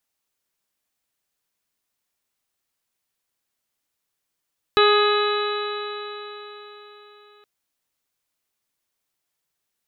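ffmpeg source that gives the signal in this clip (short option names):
-f lavfi -i "aevalsrc='0.178*pow(10,-3*t/4.11)*sin(2*PI*414.27*t)+0.0531*pow(10,-3*t/4.11)*sin(2*PI*830.15*t)+0.141*pow(10,-3*t/4.11)*sin(2*PI*1249.24*t)+0.0631*pow(10,-3*t/4.11)*sin(2*PI*1673.13*t)+0.0282*pow(10,-3*t/4.11)*sin(2*PI*2103.37*t)+0.0501*pow(10,-3*t/4.11)*sin(2*PI*2541.46*t)+0.0355*pow(10,-3*t/4.11)*sin(2*PI*2988.88*t)+0.0282*pow(10,-3*t/4.11)*sin(2*PI*3447.03*t)+0.0944*pow(10,-3*t/4.11)*sin(2*PI*3917.26*t)':d=2.67:s=44100"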